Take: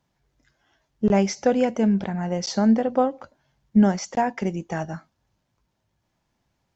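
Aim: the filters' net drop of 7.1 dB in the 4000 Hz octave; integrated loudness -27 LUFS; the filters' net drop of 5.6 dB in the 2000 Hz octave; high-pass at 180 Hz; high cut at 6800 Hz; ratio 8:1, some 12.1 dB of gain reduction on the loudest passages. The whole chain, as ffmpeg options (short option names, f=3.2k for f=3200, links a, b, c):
-af "highpass=180,lowpass=6.8k,equalizer=f=2k:t=o:g=-5.5,equalizer=f=4k:t=o:g=-8,acompressor=threshold=-27dB:ratio=8,volume=6.5dB"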